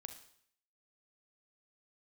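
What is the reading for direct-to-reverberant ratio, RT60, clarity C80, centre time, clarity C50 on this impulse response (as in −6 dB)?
6.5 dB, 0.60 s, 12.5 dB, 14 ms, 9.0 dB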